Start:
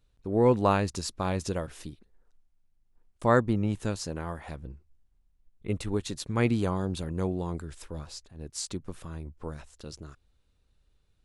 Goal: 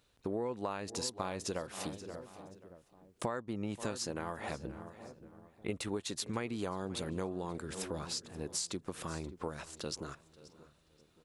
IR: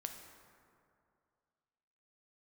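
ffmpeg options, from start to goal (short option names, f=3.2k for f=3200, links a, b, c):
-filter_complex "[0:a]asplit=2[a][b];[b]adelay=577,lowpass=f=970:p=1,volume=-19.5dB,asplit=2[c][d];[d]adelay=577,lowpass=f=970:p=1,volume=0.45,asplit=2[e][f];[f]adelay=577,lowpass=f=970:p=1,volume=0.45[g];[c][e][g]amix=inputs=3:normalize=0[h];[a][h]amix=inputs=2:normalize=0,alimiter=limit=-16dB:level=0:latency=1:release=367,highpass=f=360:p=1,asplit=2[i][j];[j]aecho=0:1:530|1060:0.0794|0.0199[k];[i][k]amix=inputs=2:normalize=0,acompressor=threshold=-42dB:ratio=6,volume=7.5dB"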